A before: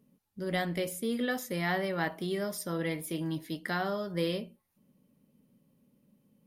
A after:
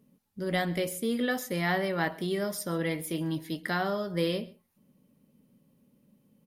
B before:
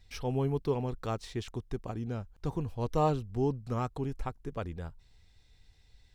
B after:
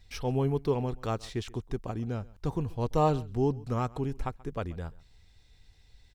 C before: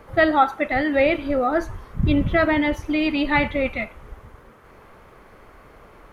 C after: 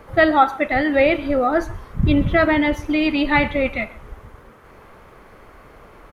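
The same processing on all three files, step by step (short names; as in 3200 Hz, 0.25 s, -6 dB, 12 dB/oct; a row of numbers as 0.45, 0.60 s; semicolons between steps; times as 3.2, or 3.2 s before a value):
echo 0.133 s -22.5 dB; gain +2.5 dB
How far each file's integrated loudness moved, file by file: +2.5, +2.5, +2.5 LU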